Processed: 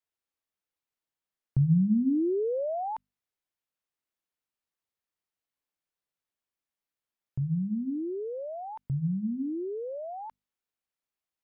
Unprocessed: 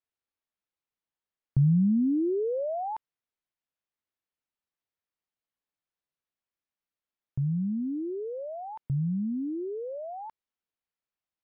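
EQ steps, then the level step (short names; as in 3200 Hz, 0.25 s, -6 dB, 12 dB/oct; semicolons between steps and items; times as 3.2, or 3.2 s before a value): notches 50/100/150/200/250 Hz; 0.0 dB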